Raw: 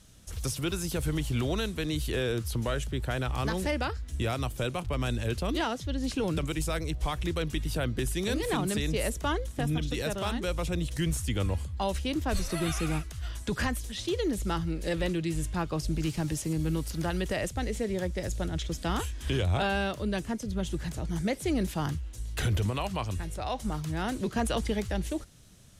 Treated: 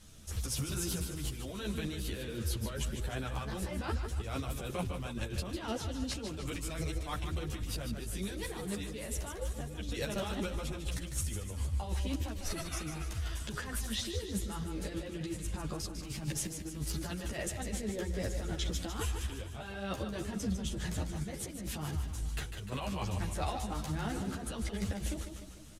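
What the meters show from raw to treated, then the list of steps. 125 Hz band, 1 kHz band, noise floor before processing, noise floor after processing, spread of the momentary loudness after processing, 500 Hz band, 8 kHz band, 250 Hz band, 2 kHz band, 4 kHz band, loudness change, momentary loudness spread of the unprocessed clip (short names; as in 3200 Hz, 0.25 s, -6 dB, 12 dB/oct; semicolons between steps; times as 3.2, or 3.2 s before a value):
-6.5 dB, -8.0 dB, -43 dBFS, -44 dBFS, 4 LU, -9.0 dB, -1.5 dB, -7.5 dB, -8.0 dB, -5.5 dB, -6.5 dB, 4 LU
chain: negative-ratio compressor -33 dBFS, ratio -0.5; feedback echo 0.15 s, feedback 56%, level -8 dB; ensemble effect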